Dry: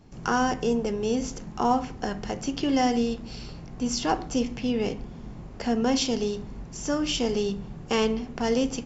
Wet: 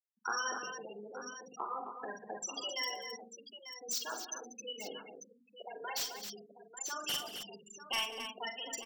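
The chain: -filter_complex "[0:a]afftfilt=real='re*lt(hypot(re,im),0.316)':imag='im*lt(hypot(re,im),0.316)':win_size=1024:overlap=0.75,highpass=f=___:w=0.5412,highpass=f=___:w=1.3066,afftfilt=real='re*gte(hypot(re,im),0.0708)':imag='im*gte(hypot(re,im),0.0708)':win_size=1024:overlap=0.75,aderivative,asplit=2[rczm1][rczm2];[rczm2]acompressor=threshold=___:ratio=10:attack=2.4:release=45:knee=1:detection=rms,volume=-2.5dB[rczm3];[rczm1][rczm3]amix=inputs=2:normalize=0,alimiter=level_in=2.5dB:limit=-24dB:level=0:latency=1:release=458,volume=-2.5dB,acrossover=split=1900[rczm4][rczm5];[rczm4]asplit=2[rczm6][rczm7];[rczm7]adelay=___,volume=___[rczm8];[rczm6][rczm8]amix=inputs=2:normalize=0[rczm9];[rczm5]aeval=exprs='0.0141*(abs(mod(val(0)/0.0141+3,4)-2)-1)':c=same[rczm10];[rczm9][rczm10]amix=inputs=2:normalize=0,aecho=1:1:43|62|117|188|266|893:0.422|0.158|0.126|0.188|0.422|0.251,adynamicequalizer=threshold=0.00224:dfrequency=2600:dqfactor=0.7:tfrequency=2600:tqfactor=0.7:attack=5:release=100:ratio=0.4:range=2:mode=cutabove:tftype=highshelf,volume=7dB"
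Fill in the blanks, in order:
190, 190, -51dB, 48, -13dB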